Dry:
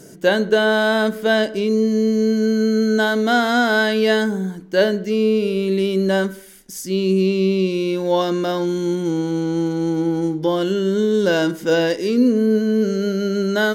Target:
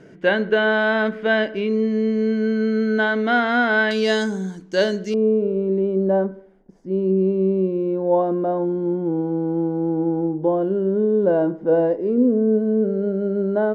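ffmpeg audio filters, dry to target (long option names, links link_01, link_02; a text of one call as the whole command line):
ffmpeg -i in.wav -af "asetnsamples=nb_out_samples=441:pad=0,asendcmd='3.91 lowpass f 6800;5.14 lowpass f 730',lowpass=frequency=2300:width_type=q:width=1.7,volume=-3dB" out.wav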